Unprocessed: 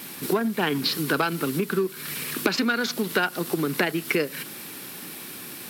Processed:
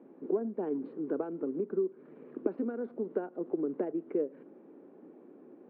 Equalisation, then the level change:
flat-topped band-pass 360 Hz, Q 1.1
high-frequency loss of the air 430 metres
low-shelf EQ 330 Hz −10 dB
0.0 dB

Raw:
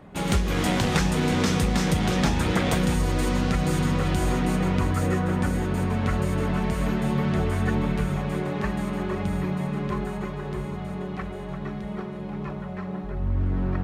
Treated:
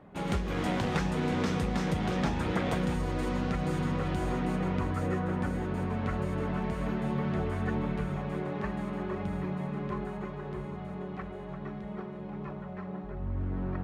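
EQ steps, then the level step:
low-pass filter 1,100 Hz 6 dB per octave
spectral tilt +1.5 dB per octave
−3.0 dB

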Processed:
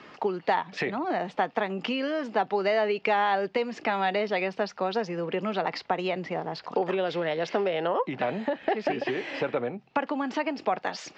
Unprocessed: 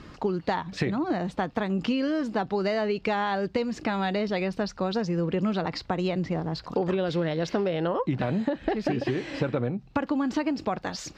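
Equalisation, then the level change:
loudspeaker in its box 180–7,400 Hz, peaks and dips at 320 Hz −6 dB, 530 Hz −4 dB, 1,100 Hz −4 dB, 1,500 Hz −4 dB, 4,000 Hz −5 dB
three-way crossover with the lows and the highs turned down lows −13 dB, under 350 Hz, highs −12 dB, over 4,100 Hz
+5.5 dB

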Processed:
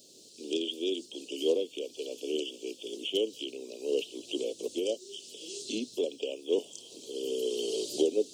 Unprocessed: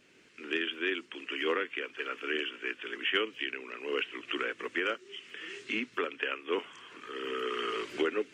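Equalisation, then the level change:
elliptic band-stop filter 610–4,000 Hz, stop band 60 dB
spectral tilt +3 dB per octave
+9.0 dB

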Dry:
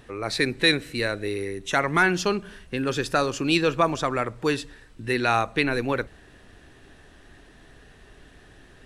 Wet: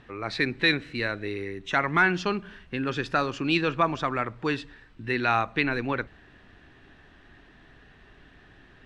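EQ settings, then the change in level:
low-pass filter 3,300 Hz 12 dB per octave
low-shelf EQ 100 Hz −5.5 dB
parametric band 500 Hz −6 dB 1 octave
0.0 dB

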